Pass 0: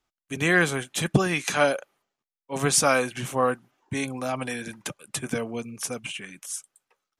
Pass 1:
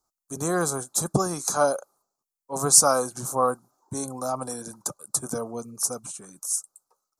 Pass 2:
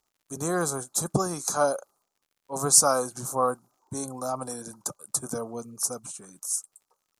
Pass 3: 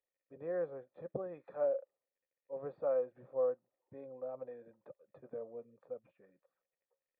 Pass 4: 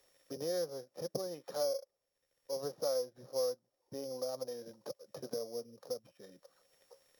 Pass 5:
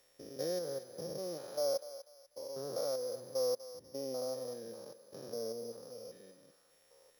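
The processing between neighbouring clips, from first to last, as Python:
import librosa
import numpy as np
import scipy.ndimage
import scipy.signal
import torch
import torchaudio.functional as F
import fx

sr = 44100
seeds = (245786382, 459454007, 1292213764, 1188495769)

y1 = fx.curve_eq(x, sr, hz=(270.0, 890.0, 1300.0, 1900.0, 3000.0, 4200.0, 7000.0), db=(0, 6, 5, -21, -22, 2, 11))
y1 = y1 * 10.0 ** (-3.5 / 20.0)
y2 = fx.dmg_crackle(y1, sr, seeds[0], per_s=73.0, level_db=-54.0)
y2 = y2 * 10.0 ** (-2.0 / 20.0)
y3 = fx.formant_cascade(y2, sr, vowel='e')
y3 = y3 * 10.0 ** (-2.0 / 20.0)
y4 = np.r_[np.sort(y3[:len(y3) // 8 * 8].reshape(-1, 8), axis=1).ravel(), y3[len(y3) // 8 * 8:]]
y4 = fx.band_squash(y4, sr, depth_pct=70)
y4 = y4 * 10.0 ** (2.5 / 20.0)
y5 = fx.spec_steps(y4, sr, hold_ms=200)
y5 = fx.echo_thinned(y5, sr, ms=245, feedback_pct=34, hz=660.0, wet_db=-12.0)
y5 = y5 * 10.0 ** (2.5 / 20.0)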